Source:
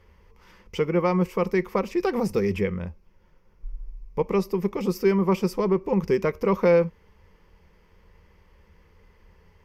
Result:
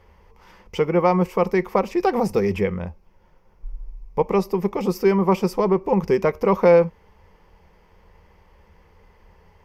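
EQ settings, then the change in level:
parametric band 760 Hz +8.5 dB 0.77 octaves
+2.0 dB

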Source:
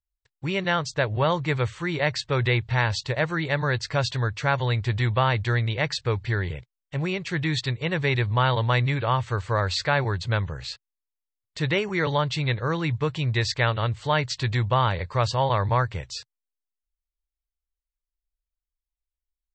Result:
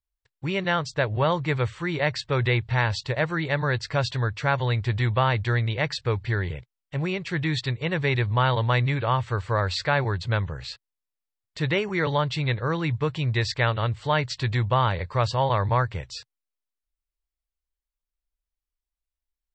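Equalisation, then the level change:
high-shelf EQ 5,400 Hz −5 dB
notch filter 6,400 Hz, Q 17
0.0 dB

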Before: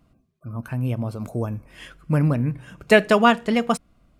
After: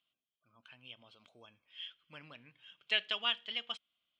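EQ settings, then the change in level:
resonant band-pass 3,200 Hz, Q 11
high-frequency loss of the air 73 metres
+6.0 dB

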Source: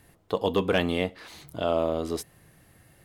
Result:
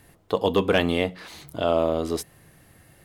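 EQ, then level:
mains-hum notches 60/120/180 Hz
+3.5 dB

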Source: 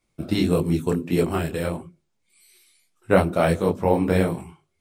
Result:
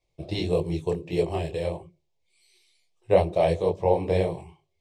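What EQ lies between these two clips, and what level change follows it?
low-pass filter 5,100 Hz 12 dB per octave
phaser with its sweep stopped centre 580 Hz, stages 4
0.0 dB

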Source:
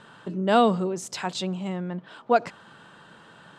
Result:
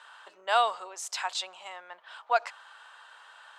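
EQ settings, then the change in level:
high-pass filter 770 Hz 24 dB per octave
0.0 dB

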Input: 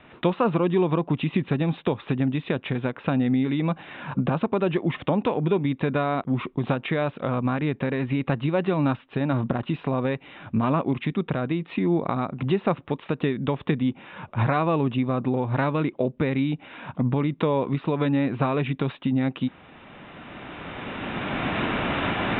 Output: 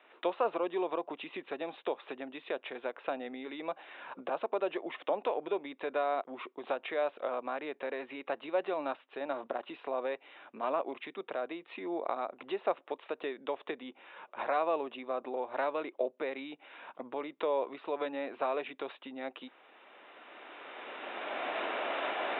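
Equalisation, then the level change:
high-pass filter 380 Hz 24 dB per octave
dynamic equaliser 650 Hz, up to +6 dB, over −41 dBFS, Q 2.3
−9.0 dB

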